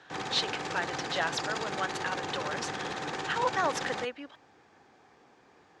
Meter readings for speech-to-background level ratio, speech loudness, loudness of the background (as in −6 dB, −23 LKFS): 2.0 dB, −33.5 LKFS, −35.5 LKFS